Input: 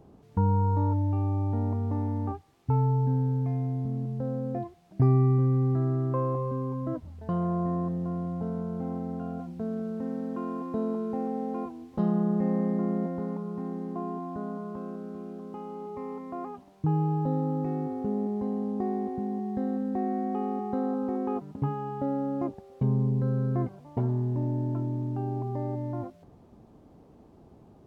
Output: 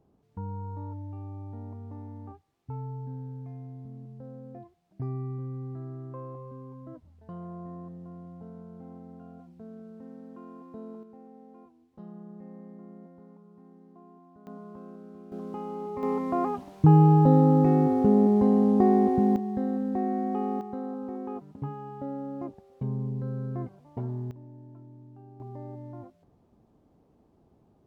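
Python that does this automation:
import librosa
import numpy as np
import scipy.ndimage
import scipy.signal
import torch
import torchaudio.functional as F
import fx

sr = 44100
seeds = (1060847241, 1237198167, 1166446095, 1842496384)

y = fx.gain(x, sr, db=fx.steps((0.0, -12.5), (11.03, -19.0), (14.47, -7.5), (15.32, 3.0), (16.03, 9.5), (19.36, 1.0), (20.61, -6.0), (24.31, -18.5), (25.4, -9.0)))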